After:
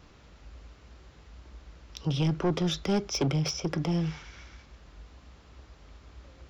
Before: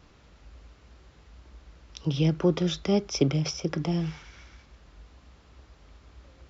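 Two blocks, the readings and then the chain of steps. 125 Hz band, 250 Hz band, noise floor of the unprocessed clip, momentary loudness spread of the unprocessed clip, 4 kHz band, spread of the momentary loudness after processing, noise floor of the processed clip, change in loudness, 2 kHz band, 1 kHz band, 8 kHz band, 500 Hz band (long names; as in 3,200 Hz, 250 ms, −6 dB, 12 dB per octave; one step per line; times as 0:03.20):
−1.5 dB, −2.5 dB, −57 dBFS, 9 LU, 0.0 dB, 12 LU, −56 dBFS, −2.0 dB, 0.0 dB, +2.0 dB, can't be measured, −4.0 dB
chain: soft clipping −22.5 dBFS, distortion −10 dB
level +1.5 dB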